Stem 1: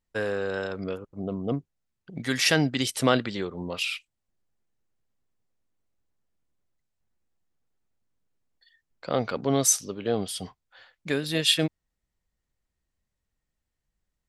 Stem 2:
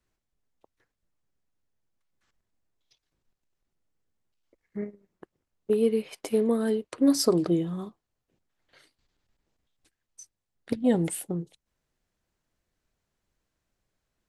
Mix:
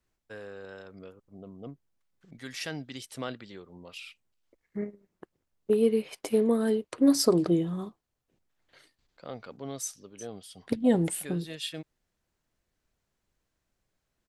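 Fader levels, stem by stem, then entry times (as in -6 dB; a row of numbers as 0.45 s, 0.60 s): -14.5 dB, 0.0 dB; 0.15 s, 0.00 s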